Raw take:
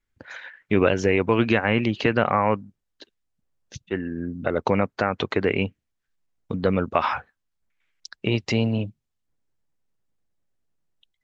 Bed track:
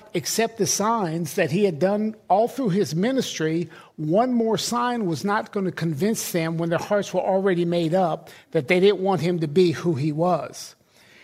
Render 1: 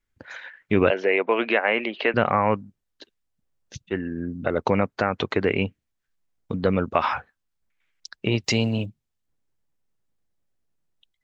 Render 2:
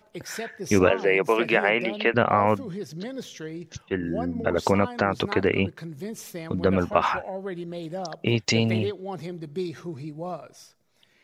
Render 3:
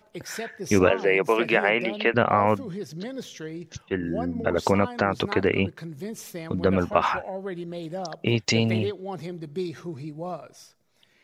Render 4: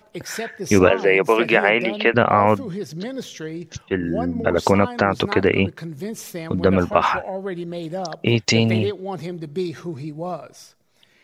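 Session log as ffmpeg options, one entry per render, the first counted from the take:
-filter_complex "[0:a]asettb=1/sr,asplit=3[a][b][c];[a]atrim=end=0.904[d];[b]atrim=start=0.9:end=2.14,asetpts=PTS-STARTPTS,afade=t=in:d=0.004:c=qsin,afade=t=out:st=1.236:d=0.004:c=qsin,highpass=f=290:w=0.5412,highpass=f=290:w=1.3066,equalizer=f=300:t=q:w=4:g=-7,equalizer=f=640:t=q:w=4:g=5,equalizer=f=2.1k:t=q:w=4:g=4,lowpass=f=3.8k:w=0.5412,lowpass=f=3.8k:w=1.3066[e];[c]atrim=start=2.136[f];[d][e]acrossfade=d=0.004:c1=hsin:c2=qsin[g];[g][f]acrossfade=d=0.004:c1=qsin:c2=hsin,asettb=1/sr,asplit=3[h][i][j];[h]atrim=end=8.444[k];[i]atrim=start=8.44:end=8.86,asetpts=PTS-STARTPTS,afade=t=in:d=0.004:c=qsin,afade=t=out:st=0.416:d=0.004:c=qsin,aemphasis=mode=production:type=75fm[l];[j]atrim=start=8.856[m];[k][l]acrossfade=d=0.004:c1=hsin:c2=qsin[n];[n][m]acrossfade=d=0.004:c1=qsin:c2=hsin"
-filter_complex "[1:a]volume=-12.5dB[a];[0:a][a]amix=inputs=2:normalize=0"
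-af anull
-af "volume=5dB,alimiter=limit=-1dB:level=0:latency=1"

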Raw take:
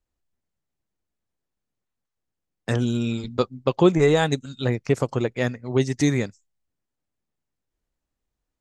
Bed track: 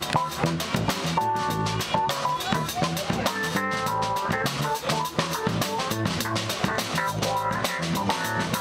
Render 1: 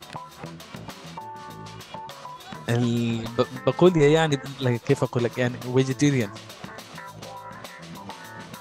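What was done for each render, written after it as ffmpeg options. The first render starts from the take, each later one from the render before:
-filter_complex "[1:a]volume=-13.5dB[a];[0:a][a]amix=inputs=2:normalize=0"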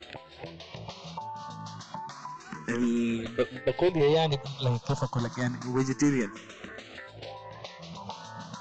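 -filter_complex "[0:a]aresample=16000,volume=18dB,asoftclip=hard,volume=-18dB,aresample=44100,asplit=2[a][b];[b]afreqshift=0.29[c];[a][c]amix=inputs=2:normalize=1"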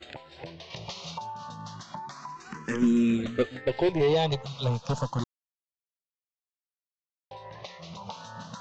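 -filter_complex "[0:a]asettb=1/sr,asplit=3[a][b][c];[a]atrim=end=0.704[d];[b]atrim=start=0.7:end=1.34,asetpts=PTS-STARTPTS,afade=t=in:d=0.004:c=qsin,afade=t=out:st=0.636:d=0.004:c=qsin,highshelf=f=2.5k:g=9[e];[c]atrim=start=1.336[f];[d][e]acrossfade=d=0.004:c1=hsin:c2=qsin[g];[g][f]acrossfade=d=0.004:c1=qsin:c2=hsin,asettb=1/sr,asplit=3[h][i][j];[h]atrim=end=2.824[k];[i]atrim=start=2.82:end=3.43,asetpts=PTS-STARTPTS,afade=t=in:d=0.004:c=qsin,afade=t=out:st=0.606:d=0.004:c=qsin,equalizer=f=180:w=1.1:g=7.5[l];[j]atrim=start=3.426[m];[k][l]acrossfade=d=0.004:c1=hsin:c2=qsin[n];[n][m]acrossfade=d=0.004:c1=qsin:c2=hsin,asplit=3[o][p][q];[o]atrim=end=5.24,asetpts=PTS-STARTPTS,afade=t=out:st=5.236:d=0.004:c=hsin[r];[p]atrim=start=5.24:end=7.31,asetpts=PTS-STARTPTS,volume=0[s];[q]atrim=start=7.31,asetpts=PTS-STARTPTS,afade=t=in:d=0.004:c=hsin[t];[r][s][t]concat=n=3:v=0:a=1"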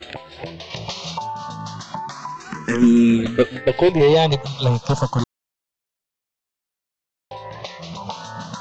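-af "volume=9.5dB"

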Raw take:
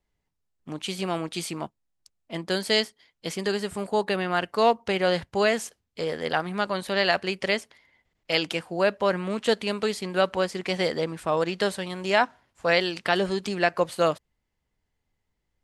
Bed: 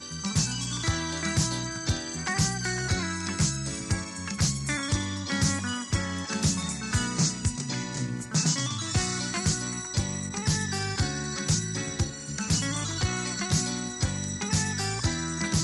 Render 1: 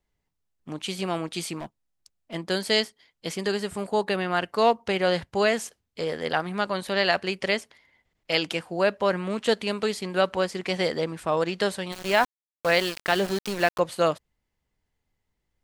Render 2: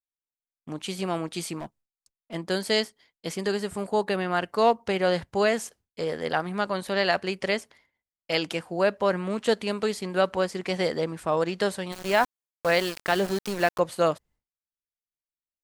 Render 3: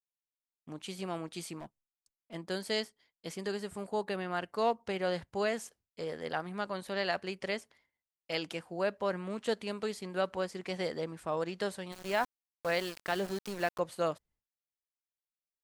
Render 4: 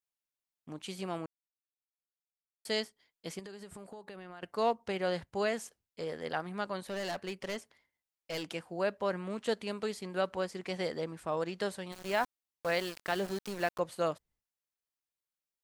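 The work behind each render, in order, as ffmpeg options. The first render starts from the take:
-filter_complex "[0:a]asettb=1/sr,asplit=3[a][b][c];[a]atrim=end=1.594[d];[b]atrim=start=1.59:end=2.34,asetpts=PTS-STARTPTS,afade=t=in:d=0.004:c=qsin,afade=t=out:st=0.746:d=0.004:c=qsin,asoftclip=type=hard:threshold=-31dB[e];[c]atrim=start=2.336[f];[d][e]acrossfade=d=0.004:c1=hsin:c2=qsin[g];[g][f]acrossfade=d=0.004:c1=qsin:c2=hsin,asettb=1/sr,asplit=3[h][i][j];[h]atrim=end=11.924[k];[i]atrim=start=11.92:end=13.79,asetpts=PTS-STARTPTS,afade=t=in:d=0.004:c=qsin,afade=t=out:st=1.866:d=0.004:c=qsin,aeval=exprs='val(0)*gte(abs(val(0)),0.0316)':c=same[l];[j]atrim=start=13.786[m];[k][l]acrossfade=d=0.004:c1=hsin:c2=qsin[n];[n][m]acrossfade=d=0.004:c1=qsin:c2=hsin"
-af "agate=range=-33dB:threshold=-52dB:ratio=3:detection=peak,equalizer=f=3.1k:w=0.86:g=-3.5"
-af "volume=-9dB"
-filter_complex "[0:a]asettb=1/sr,asplit=3[a][b][c];[a]atrim=end=3.394[d];[b]atrim=start=3.39:end=4.43,asetpts=PTS-STARTPTS,afade=t=in:d=0.004:c=qsin,afade=t=out:st=1.036:d=0.004:c=qsin,acompressor=threshold=-43dB:ratio=12:attack=3.2:release=140:knee=1:detection=peak[e];[c]atrim=start=4.426[f];[d][e]acrossfade=d=0.004:c1=hsin:c2=qsin[g];[g][f]acrossfade=d=0.004:c1=qsin:c2=hsin,asettb=1/sr,asplit=3[h][i][j];[h]atrim=end=6.874[k];[i]atrim=start=6.87:end=8.5,asetpts=PTS-STARTPTS,afade=t=in:d=0.004:c=qsin,afade=t=out:st=1.626:d=0.004:c=qsin,asoftclip=type=hard:threshold=-33.5dB[l];[j]atrim=start=8.496[m];[k][l]acrossfade=d=0.004:c1=hsin:c2=qsin[n];[n][m]acrossfade=d=0.004:c1=qsin:c2=hsin,asplit=3[o][p][q];[o]atrim=end=1.26,asetpts=PTS-STARTPTS,afade=t=out:st=1.256:d=0.004:c=hsin[r];[p]atrim=start=1.26:end=2.65,asetpts=PTS-STARTPTS,volume=0[s];[q]atrim=start=2.65,asetpts=PTS-STARTPTS,afade=t=in:d=0.004:c=hsin[t];[r][s][t]concat=n=3:v=0:a=1"

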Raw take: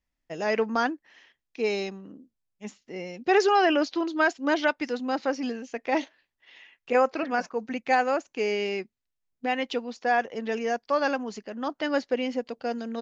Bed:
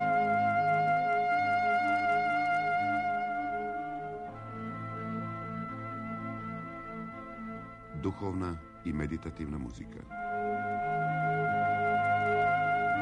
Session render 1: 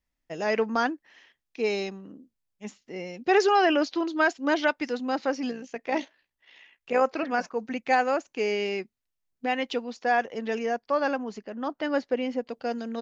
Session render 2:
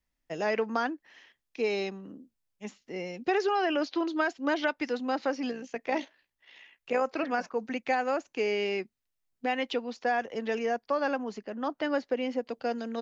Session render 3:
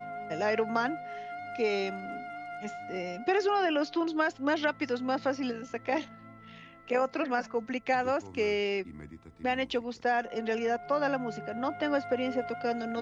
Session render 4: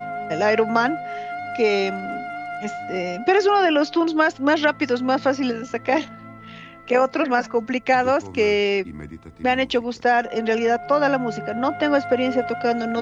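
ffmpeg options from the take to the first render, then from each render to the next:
-filter_complex "[0:a]asettb=1/sr,asplit=3[a][b][c];[a]atrim=end=5.514[d];[b]atrim=start=5.51:end=7.02,asetpts=PTS-STARTPTS,afade=t=in:d=0.004:c=qsin,afade=t=out:st=1.506:d=0.004:c=qsin,tremolo=f=60:d=0.462[e];[c]atrim=start=7.016[f];[d][e]acrossfade=d=0.004:c1=hsin:c2=qsin[g];[g][f]acrossfade=d=0.004:c1=qsin:c2=hsin,asettb=1/sr,asplit=3[h][i][j];[h]atrim=end=10.664[k];[i]atrim=start=10.66:end=12.5,asetpts=PTS-STARTPTS,afade=t=in:d=0.004:c=qsin,afade=t=out:st=1.836:d=0.004:c=qsin,highshelf=f=2.9k:g=-7.5[l];[j]atrim=start=12.496[m];[k][l]acrossfade=d=0.004:c1=hsin:c2=qsin[n];[n][m]acrossfade=d=0.004:c1=qsin:c2=hsin"
-filter_complex "[0:a]acrossover=split=250|5100[a][b][c];[a]acompressor=threshold=-43dB:ratio=4[d];[b]acompressor=threshold=-25dB:ratio=4[e];[c]acompressor=threshold=-57dB:ratio=4[f];[d][e][f]amix=inputs=3:normalize=0"
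-filter_complex "[1:a]volume=-12dB[a];[0:a][a]amix=inputs=2:normalize=0"
-af "volume=10dB"

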